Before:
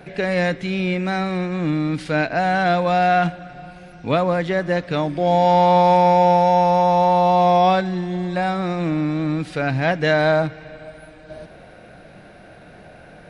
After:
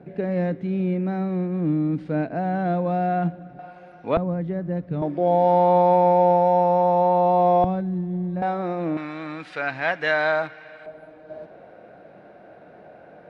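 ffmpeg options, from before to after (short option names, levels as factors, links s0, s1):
-af "asetnsamples=n=441:p=0,asendcmd='3.59 bandpass f 690;4.17 bandpass f 130;5.02 bandpass f 410;7.64 bandpass f 130;8.42 bandpass f 540;8.97 bandpass f 1500;10.86 bandpass f 550',bandpass=f=240:t=q:w=0.8:csg=0"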